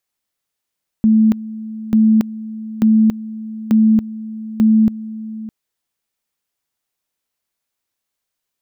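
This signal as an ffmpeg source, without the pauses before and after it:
ffmpeg -f lavfi -i "aevalsrc='pow(10,(-8-17*gte(mod(t,0.89),0.28))/20)*sin(2*PI*219*t)':duration=4.45:sample_rate=44100" out.wav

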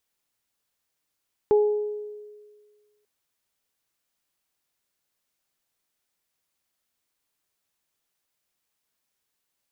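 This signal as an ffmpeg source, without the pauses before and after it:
ffmpeg -f lavfi -i "aevalsrc='0.2*pow(10,-3*t/1.65)*sin(2*PI*419*t)+0.0447*pow(10,-3*t/0.77)*sin(2*PI*838*t)':duration=1.54:sample_rate=44100" out.wav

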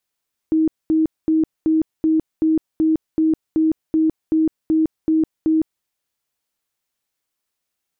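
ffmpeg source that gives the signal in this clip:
ffmpeg -f lavfi -i "aevalsrc='0.224*sin(2*PI*317*mod(t,0.38))*lt(mod(t,0.38),50/317)':duration=5.32:sample_rate=44100" out.wav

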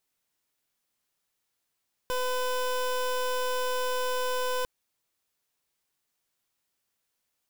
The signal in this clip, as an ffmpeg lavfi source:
ffmpeg -f lavfi -i "aevalsrc='0.0376*(2*lt(mod(504*t,1),0.23)-1)':duration=2.55:sample_rate=44100" out.wav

